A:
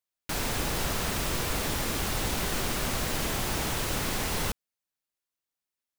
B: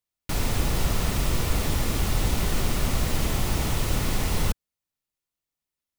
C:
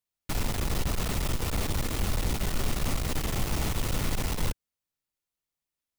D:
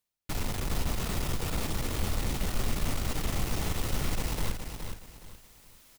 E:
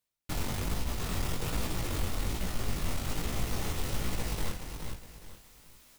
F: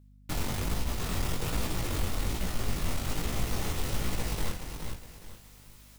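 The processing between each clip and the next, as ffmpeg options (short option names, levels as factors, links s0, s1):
-af "lowshelf=f=180:g=11,bandreject=f=1600:w=13"
-af "aeval=exprs='(tanh(14.1*val(0)+0.45)-tanh(0.45))/14.1':c=same"
-af "areverse,acompressor=mode=upward:threshold=0.0355:ratio=2.5,areverse,flanger=delay=3.2:depth=9.3:regen=-69:speed=1.2:shape=triangular,aecho=1:1:418|836|1254|1672:0.447|0.13|0.0376|0.0109,volume=1.19"
-af "flanger=delay=16:depth=7.7:speed=1.2,alimiter=limit=0.0708:level=0:latency=1:release=493,volume=1.33"
-af "aeval=exprs='val(0)+0.00158*(sin(2*PI*50*n/s)+sin(2*PI*2*50*n/s)/2+sin(2*PI*3*50*n/s)/3+sin(2*PI*4*50*n/s)/4+sin(2*PI*5*50*n/s)/5)':c=same,volume=1.19"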